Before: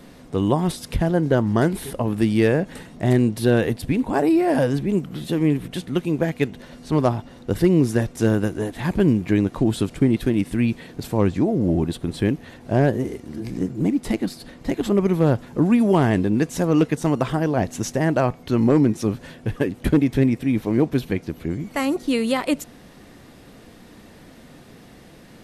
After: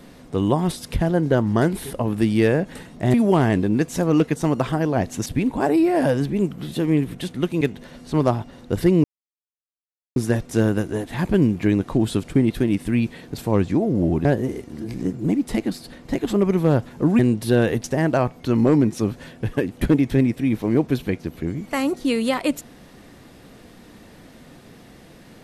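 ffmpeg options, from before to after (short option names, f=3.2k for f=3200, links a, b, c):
-filter_complex "[0:a]asplit=8[a][b][c][d][e][f][g][h];[a]atrim=end=3.142[i];[b]atrim=start=15.748:end=17.872[j];[c]atrim=start=3.788:end=6.142[k];[d]atrim=start=6.388:end=7.82,asetpts=PTS-STARTPTS,afade=t=out:st=1.428:d=0.004:c=hsin,apad=pad_dur=1.12[l];[e]atrim=start=7.82:end=11.912,asetpts=PTS-STARTPTS,afade=t=in:d=0.004:c=hsin[m];[f]atrim=start=12.808:end=15.752[n];[g]atrim=start=3.138:end=3.792[o];[h]atrim=start=17.868[p];[i][j]acrossfade=d=0.004:c1=hsin:c2=hsin[q];[q][k]acrossfade=d=0.004:c1=hsin:c2=hsin[r];[l][m]concat=n=2:v=0:a=1[s];[r][s]acrossfade=d=0.004:c1=hsin:c2=hsin[t];[t][n]acrossfade=d=0.004:c1=hsin:c2=hsin[u];[u][o]acrossfade=d=0.004:c1=hsin:c2=hsin[v];[v][p]acrossfade=d=0.004:c1=hsin:c2=hsin"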